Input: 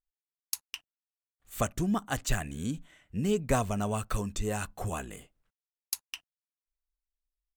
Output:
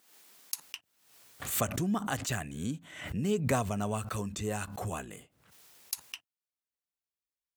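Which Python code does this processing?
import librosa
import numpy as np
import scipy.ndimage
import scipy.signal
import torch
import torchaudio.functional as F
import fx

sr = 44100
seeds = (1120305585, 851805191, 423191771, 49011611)

y = fx.highpass(x, sr, hz=fx.steps((0.0, 170.0), (0.64, 79.0)), slope=24)
y = fx.pre_swell(y, sr, db_per_s=69.0)
y = y * 10.0 ** (-2.0 / 20.0)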